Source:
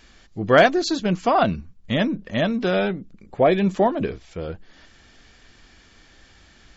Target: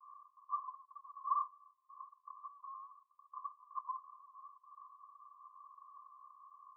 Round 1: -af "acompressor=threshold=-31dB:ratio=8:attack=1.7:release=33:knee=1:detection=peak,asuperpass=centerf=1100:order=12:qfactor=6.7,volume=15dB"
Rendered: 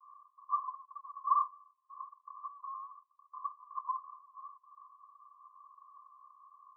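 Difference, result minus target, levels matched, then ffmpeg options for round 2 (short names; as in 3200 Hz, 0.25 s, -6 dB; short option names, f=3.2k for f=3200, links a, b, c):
compressor: peak gain reduction -6 dB
-af "acompressor=threshold=-38dB:ratio=8:attack=1.7:release=33:knee=1:detection=peak,asuperpass=centerf=1100:order=12:qfactor=6.7,volume=15dB"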